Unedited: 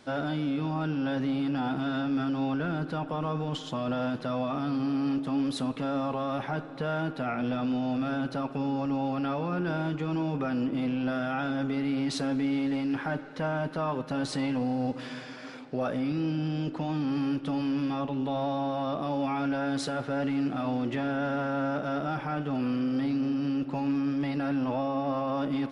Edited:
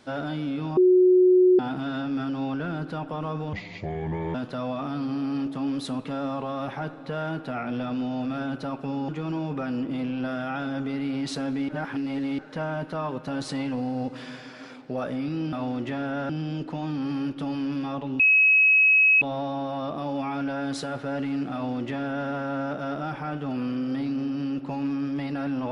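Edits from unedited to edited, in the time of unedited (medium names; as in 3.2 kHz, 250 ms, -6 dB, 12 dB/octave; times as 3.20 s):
0.77–1.59 s: bleep 366 Hz -13.5 dBFS
3.53–4.06 s: speed 65%
8.80–9.92 s: delete
12.52–13.22 s: reverse
18.26 s: add tone 2.56 kHz -14.5 dBFS 1.02 s
20.58–21.35 s: copy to 16.36 s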